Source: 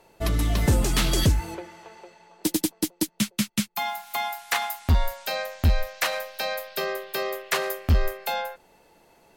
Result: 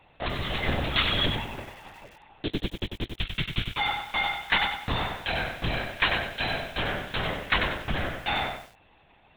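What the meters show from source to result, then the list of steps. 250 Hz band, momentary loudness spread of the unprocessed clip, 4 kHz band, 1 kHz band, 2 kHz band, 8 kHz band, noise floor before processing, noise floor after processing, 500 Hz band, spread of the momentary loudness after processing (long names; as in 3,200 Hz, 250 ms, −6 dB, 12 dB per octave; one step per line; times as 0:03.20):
−6.0 dB, 8 LU, +3.0 dB, 0.0 dB, +3.5 dB, −22.0 dB, −60 dBFS, −59 dBFS, −4.0 dB, 10 LU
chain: spectral tilt +3 dB per octave
linear-prediction vocoder at 8 kHz whisper
feedback echo at a low word length 95 ms, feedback 35%, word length 8 bits, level −6 dB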